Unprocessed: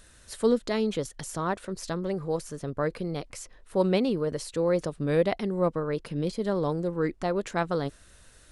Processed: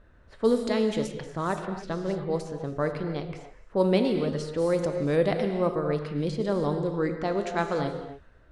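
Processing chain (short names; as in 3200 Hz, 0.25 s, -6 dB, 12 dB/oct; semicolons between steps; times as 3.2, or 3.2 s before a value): non-linear reverb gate 0.32 s flat, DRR 5.5 dB; low-pass opened by the level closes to 1200 Hz, open at -21 dBFS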